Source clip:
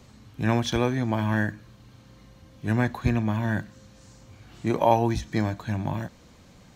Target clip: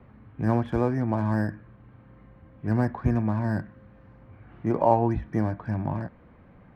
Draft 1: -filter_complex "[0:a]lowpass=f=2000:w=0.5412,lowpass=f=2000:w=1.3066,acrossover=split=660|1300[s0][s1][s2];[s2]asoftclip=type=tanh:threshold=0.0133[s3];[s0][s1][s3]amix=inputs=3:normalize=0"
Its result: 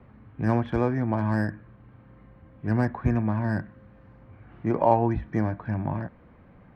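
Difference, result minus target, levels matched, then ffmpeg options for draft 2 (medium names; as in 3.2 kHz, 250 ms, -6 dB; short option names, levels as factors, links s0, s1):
saturation: distortion -5 dB
-filter_complex "[0:a]lowpass=f=2000:w=0.5412,lowpass=f=2000:w=1.3066,acrossover=split=660|1300[s0][s1][s2];[s2]asoftclip=type=tanh:threshold=0.00501[s3];[s0][s1][s3]amix=inputs=3:normalize=0"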